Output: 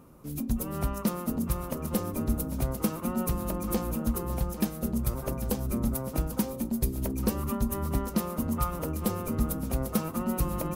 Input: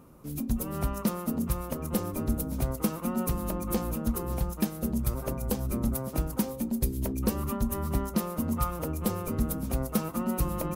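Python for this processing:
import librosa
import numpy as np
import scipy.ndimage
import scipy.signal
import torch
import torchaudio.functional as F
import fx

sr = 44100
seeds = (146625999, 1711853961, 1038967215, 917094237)

y = x + 10.0 ** (-14.5 / 20.0) * np.pad(x, (int(798 * sr / 1000.0), 0))[:len(x)]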